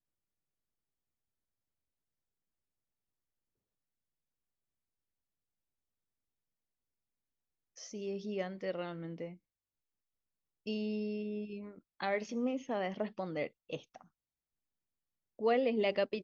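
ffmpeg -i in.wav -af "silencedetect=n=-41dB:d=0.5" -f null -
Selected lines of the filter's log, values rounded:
silence_start: 0.00
silence_end: 7.81 | silence_duration: 7.81
silence_start: 9.29
silence_end: 10.67 | silence_duration: 1.38
silence_start: 13.96
silence_end: 15.39 | silence_duration: 1.43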